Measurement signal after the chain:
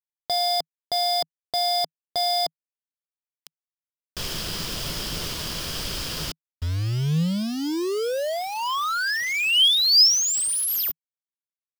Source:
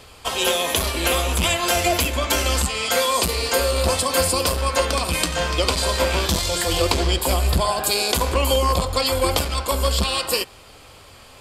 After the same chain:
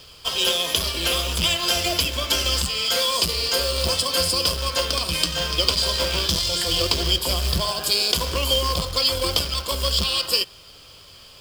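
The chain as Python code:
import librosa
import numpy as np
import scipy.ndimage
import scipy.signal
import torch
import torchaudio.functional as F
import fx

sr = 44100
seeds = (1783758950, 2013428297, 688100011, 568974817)

y = fx.quant_companded(x, sr, bits=4)
y = fx.graphic_eq_31(y, sr, hz=(160, 250, 800, 2000, 3150, 5000), db=(5, -4, -7, -3, 9, 12))
y = y * librosa.db_to_amplitude(-5.0)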